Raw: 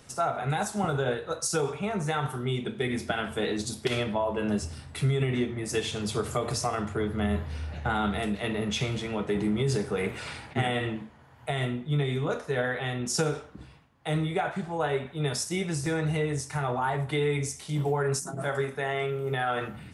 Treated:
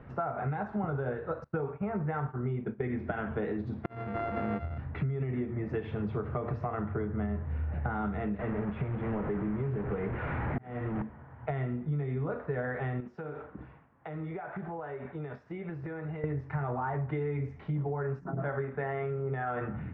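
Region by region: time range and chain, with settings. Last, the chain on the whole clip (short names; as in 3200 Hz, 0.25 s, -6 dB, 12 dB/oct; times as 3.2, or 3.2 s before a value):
1.44–2.84 LPF 2800 Hz + expander -32 dBFS
3.84–4.78 sample sorter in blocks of 64 samples + auto swell 0.673 s + high shelf 4300 Hz +8 dB
8.39–11.02 delta modulation 64 kbps, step -25 dBFS + auto swell 0.597 s + air absorption 340 m
13–16.24 low shelf 180 Hz -11.5 dB + compressor 16:1, threshold -38 dBFS
whole clip: LPF 1900 Hz 24 dB/oct; low shelf 250 Hz +6 dB; compressor 6:1, threshold -32 dBFS; gain +2 dB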